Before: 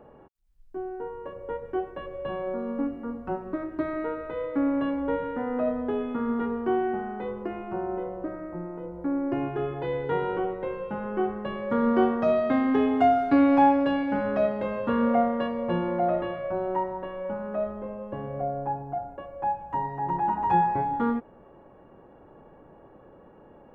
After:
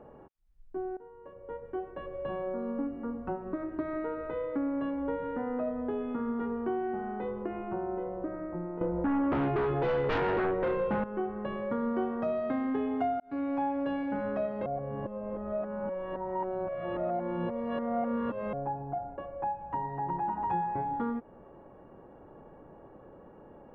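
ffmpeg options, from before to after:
ffmpeg -i in.wav -filter_complex "[0:a]asettb=1/sr,asplit=3[link_01][link_02][link_03];[link_01]atrim=end=8.814[link_04];[link_02]atrim=start=8.81:end=11.04,asetpts=PTS-STARTPTS,afade=type=in:duration=0.004:curve=qsin,afade=type=out:start_time=2.226:duration=0.004:curve=qsin,aeval=exprs='0.168*sin(PI/2*3.55*val(0)/0.168)':channel_layout=same[link_05];[link_03]atrim=start=11.036[link_06];[link_04][link_05]acrossfade=duration=0.004:curve1=hsin:curve2=qsin[link_07];[link_07][link_06]acrossfade=duration=0.004:curve1=qsin:curve2=hsin,asplit=5[link_08][link_09][link_10][link_11][link_12];[link_08]atrim=end=0.97,asetpts=PTS-STARTPTS,afade=type=out:start_time=0.966:duration=0.004:curve=hsin:silence=0.125893[link_13];[link_09]atrim=start=0.97:end=13.2,asetpts=PTS-STARTPTS,afade=type=in:duration=1.52:silence=0.125893,afade=type=out:start_time=12.226:duration=0.004:curve=hsin[link_14];[link_10]atrim=start=13.2:end=14.662,asetpts=PTS-STARTPTS,afade=type=in:duration=0.66[link_15];[link_11]atrim=start=14.658:end=18.532,asetpts=PTS-STARTPTS,areverse[link_16];[link_12]atrim=start=18.528[link_17];[link_13][link_14][link_15]concat=n=3:v=0:a=1[link_18];[link_18][link_16]acrossfade=duration=0.004:curve1=hsin:curve2=hsin[link_19];[link_19][link_17]acrossfade=duration=0.004:curve1=hsin:curve2=hsin,highshelf=frequency=3300:gain=-10.5,acompressor=threshold=-32dB:ratio=2.5" out.wav

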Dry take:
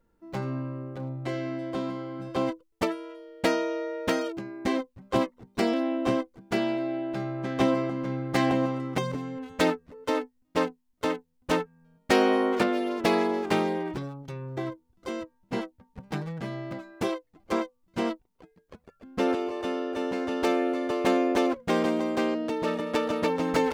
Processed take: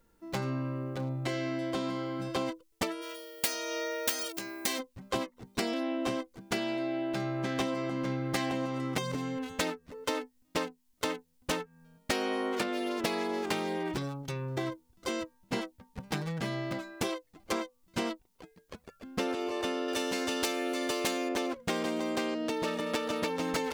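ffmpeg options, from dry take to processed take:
ffmpeg -i in.wav -filter_complex "[0:a]asplit=3[link_01][link_02][link_03];[link_01]afade=type=out:start_time=3.01:duration=0.02[link_04];[link_02]aemphasis=mode=production:type=riaa,afade=type=in:start_time=3.01:duration=0.02,afade=type=out:start_time=4.78:duration=0.02[link_05];[link_03]afade=type=in:start_time=4.78:duration=0.02[link_06];[link_04][link_05][link_06]amix=inputs=3:normalize=0,asettb=1/sr,asplit=3[link_07][link_08][link_09];[link_07]atrim=end=19.884[link_10];[link_08]atrim=start=19.88:end=21.29,asetpts=PTS-STARTPTS,afade=type=in:duration=0.004:curve=qsin,afade=type=out:start_time=1.406:duration=0.004:curve=qsin,highshelf=frequency=3200:gain=11.5[link_11];[link_09]atrim=start=21.286[link_12];[link_10][link_11]acrossfade=duration=0.004:curve1=hsin:curve2=qsin[link_13];[link_13][link_12]acrossfade=duration=0.004:curve1=qsin:curve2=hsin,highshelf=frequency=2400:gain=10.5,acompressor=threshold=-30dB:ratio=6,volume=1dB" out.wav

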